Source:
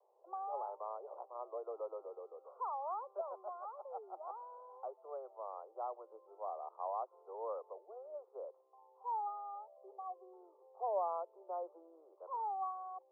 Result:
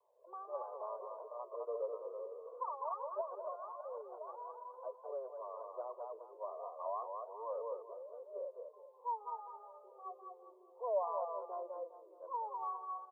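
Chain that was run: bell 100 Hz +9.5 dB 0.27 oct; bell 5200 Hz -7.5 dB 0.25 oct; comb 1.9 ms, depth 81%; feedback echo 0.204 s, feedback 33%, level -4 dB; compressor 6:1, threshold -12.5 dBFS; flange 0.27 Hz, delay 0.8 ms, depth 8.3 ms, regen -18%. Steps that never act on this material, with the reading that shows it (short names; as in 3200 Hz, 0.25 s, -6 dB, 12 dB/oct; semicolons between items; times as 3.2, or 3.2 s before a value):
bell 100 Hz: input band starts at 320 Hz; bell 5200 Hz: input band ends at 1400 Hz; compressor, threshold -12.5 dBFS: input peak -23.5 dBFS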